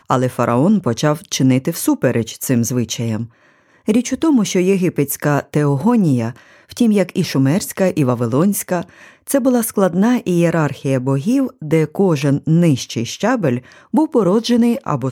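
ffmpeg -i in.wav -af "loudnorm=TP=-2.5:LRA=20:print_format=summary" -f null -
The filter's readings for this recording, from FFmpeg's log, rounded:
Input Integrated:    -16.6 LUFS
Input True Peak:      -1.3 dBTP
Input LRA:             1.1 LU
Input Threshold:     -26.8 LUFS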